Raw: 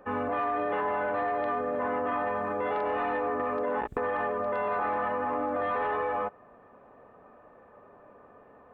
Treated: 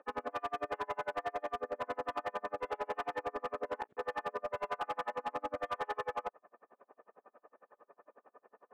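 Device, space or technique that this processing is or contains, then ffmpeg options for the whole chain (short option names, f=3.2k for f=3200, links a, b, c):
helicopter radio: -af "highpass=380,lowpass=2.6k,aeval=exprs='val(0)*pow(10,-36*(0.5-0.5*cos(2*PI*11*n/s))/20)':c=same,asoftclip=type=hard:threshold=-30.5dB"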